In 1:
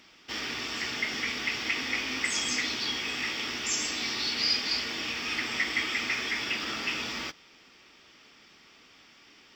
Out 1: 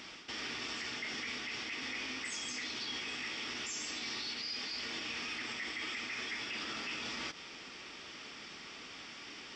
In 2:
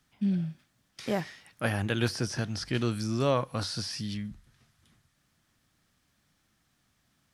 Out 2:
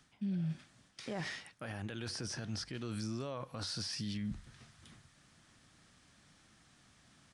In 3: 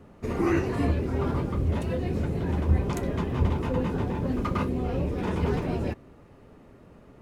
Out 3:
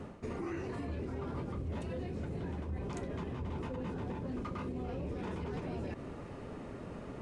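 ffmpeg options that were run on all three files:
-af "lowshelf=frequency=64:gain=-5,areverse,acompressor=threshold=-40dB:ratio=8,areverse,alimiter=level_in=14.5dB:limit=-24dB:level=0:latency=1:release=72,volume=-14.5dB,aresample=22050,aresample=44100,volume=7.5dB"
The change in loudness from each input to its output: −10.0, −9.5, −12.5 LU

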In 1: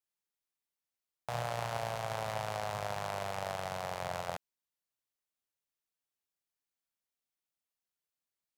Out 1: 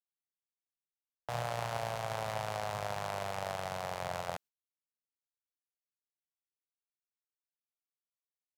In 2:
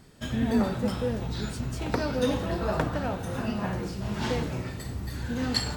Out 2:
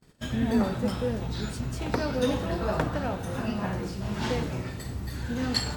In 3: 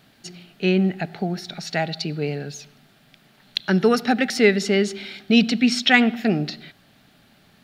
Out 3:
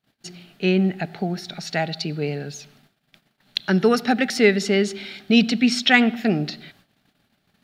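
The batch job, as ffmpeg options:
-af "agate=range=-26dB:threshold=-53dB:ratio=16:detection=peak"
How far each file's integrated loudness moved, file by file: 0.0, 0.0, 0.0 LU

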